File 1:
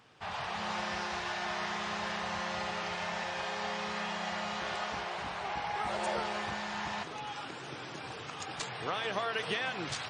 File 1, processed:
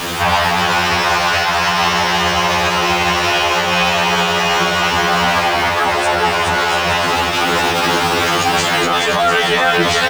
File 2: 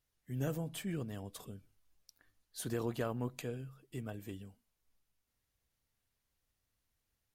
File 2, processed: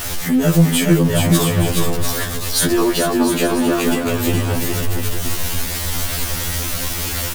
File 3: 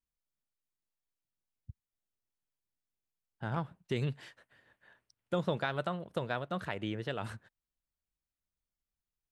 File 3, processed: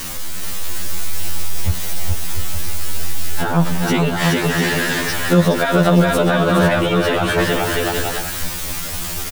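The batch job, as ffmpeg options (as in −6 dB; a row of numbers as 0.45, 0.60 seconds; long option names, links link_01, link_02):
-filter_complex "[0:a]aeval=exprs='val(0)+0.5*0.00562*sgn(val(0))':channel_layout=same,asplit=2[link_01][link_02];[link_02]acompressor=threshold=-44dB:ratio=6,volume=1dB[link_03];[link_01][link_03]amix=inputs=2:normalize=0,aecho=1:1:420|693|870.4|985.8|1061:0.631|0.398|0.251|0.158|0.1,alimiter=level_in=26dB:limit=-1dB:release=50:level=0:latency=1,afftfilt=real='re*2*eq(mod(b,4),0)':imag='im*2*eq(mod(b,4),0)':win_size=2048:overlap=0.75,volume=-2.5dB"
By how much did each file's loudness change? +22.0, +23.5, +18.5 LU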